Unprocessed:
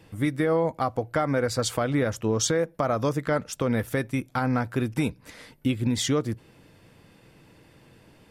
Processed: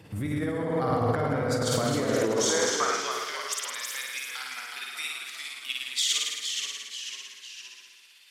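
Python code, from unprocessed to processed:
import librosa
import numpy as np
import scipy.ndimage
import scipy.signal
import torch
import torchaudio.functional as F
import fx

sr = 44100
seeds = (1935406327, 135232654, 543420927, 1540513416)

y = x * (1.0 - 0.43 / 2.0 + 0.43 / 2.0 * np.cos(2.0 * np.pi * 17.0 * (np.arange(len(x)) / sr)))
y = fx.room_flutter(y, sr, wall_m=9.2, rt60_s=1.3)
y = fx.filter_sweep_highpass(y, sr, from_hz=91.0, to_hz=3100.0, start_s=1.67, end_s=3.16, q=1.5)
y = fx.over_compress(y, sr, threshold_db=-27.0, ratio=-1.0)
y = fx.echo_pitch(y, sr, ms=109, semitones=-1, count=3, db_per_echo=-6.0)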